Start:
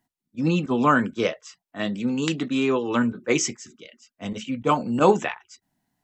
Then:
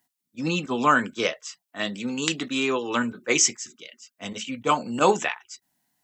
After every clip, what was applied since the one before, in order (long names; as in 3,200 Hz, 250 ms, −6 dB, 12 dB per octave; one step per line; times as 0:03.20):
spectral tilt +2.5 dB per octave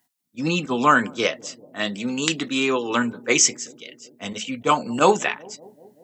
bucket-brigade delay 191 ms, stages 1,024, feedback 71%, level −22.5 dB
level +3 dB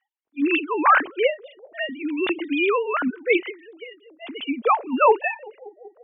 three sine waves on the formant tracks